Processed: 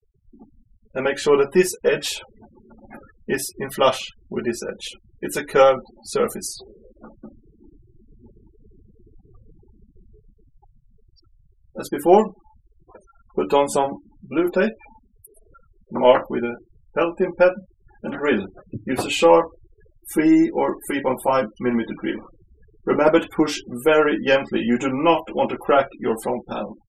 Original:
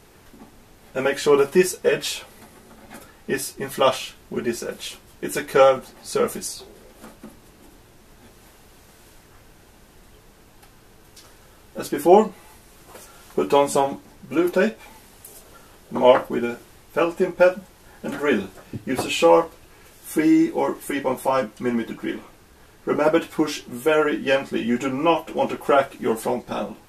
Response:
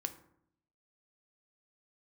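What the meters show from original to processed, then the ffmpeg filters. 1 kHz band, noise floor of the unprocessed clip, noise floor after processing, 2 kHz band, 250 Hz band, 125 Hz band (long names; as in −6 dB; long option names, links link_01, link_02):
+1.0 dB, −51 dBFS, −60 dBFS, +1.0 dB, +1.0 dB, +0.5 dB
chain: -af "dynaudnorm=framelen=470:gausssize=9:maxgain=5dB,aeval=exprs='0.891*(cos(1*acos(clip(val(0)/0.891,-1,1)))-cos(1*PI/2))+0.00891*(cos(3*acos(clip(val(0)/0.891,-1,1)))-cos(3*PI/2))+0.0112*(cos(6*acos(clip(val(0)/0.891,-1,1)))-cos(6*PI/2))':channel_layout=same,afftfilt=real='re*gte(hypot(re,im),0.0178)':imag='im*gte(hypot(re,im),0.0178)':win_size=1024:overlap=0.75"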